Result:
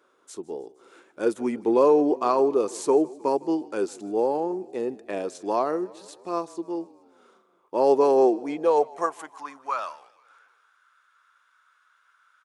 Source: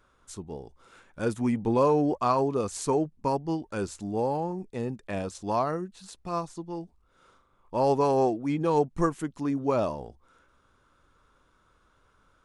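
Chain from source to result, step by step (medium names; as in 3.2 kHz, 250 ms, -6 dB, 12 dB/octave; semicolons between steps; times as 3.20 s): frequency-shifting echo 155 ms, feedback 65%, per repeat -31 Hz, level -22 dB; high-pass sweep 360 Hz -> 1.5 kHz, 8.29–9.99 s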